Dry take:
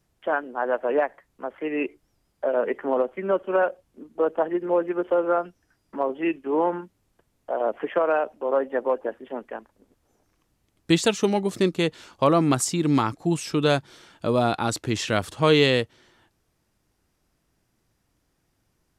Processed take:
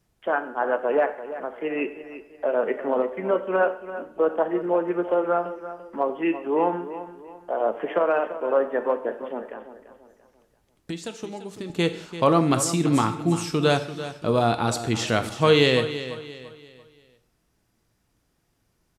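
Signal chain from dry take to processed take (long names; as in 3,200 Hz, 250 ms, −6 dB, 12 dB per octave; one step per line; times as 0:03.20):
0:09.46–0:11.70: downward compressor 4 to 1, threshold −34 dBFS, peak gain reduction 16.5 dB
repeating echo 340 ms, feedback 37%, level −13 dB
reverb whose tail is shaped and stops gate 210 ms falling, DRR 8.5 dB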